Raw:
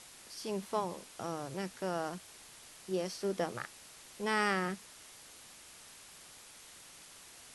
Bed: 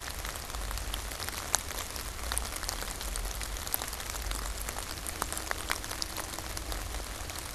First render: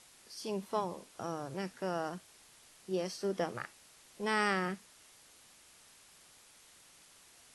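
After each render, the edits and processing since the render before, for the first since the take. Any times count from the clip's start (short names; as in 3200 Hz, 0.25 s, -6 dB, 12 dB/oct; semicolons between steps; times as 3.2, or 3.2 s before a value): noise print and reduce 6 dB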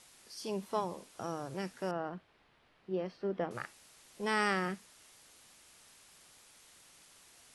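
1.91–3.51 air absorption 390 m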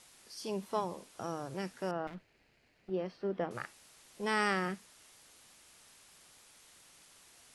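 2.07–2.9 minimum comb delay 0.44 ms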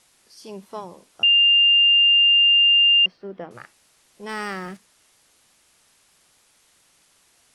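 1.23–3.06 bleep 2800 Hz -12 dBFS; 4.29–4.77 G.711 law mismatch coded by mu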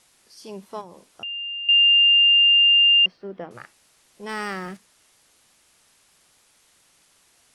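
0.81–1.69 compressor 2.5:1, threshold -39 dBFS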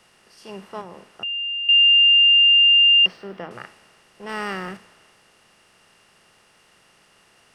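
per-bin compression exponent 0.6; three-band expander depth 40%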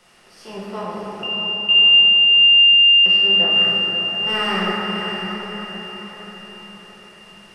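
on a send: diffused feedback echo 0.61 s, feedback 46%, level -7.5 dB; on the sum: shoebox room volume 180 m³, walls hard, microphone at 0.95 m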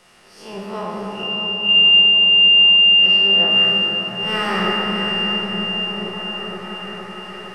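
spectral swells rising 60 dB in 0.42 s; repeats that get brighter 0.465 s, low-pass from 200 Hz, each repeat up 1 oct, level -3 dB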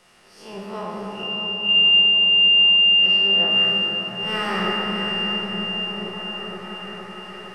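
gain -3.5 dB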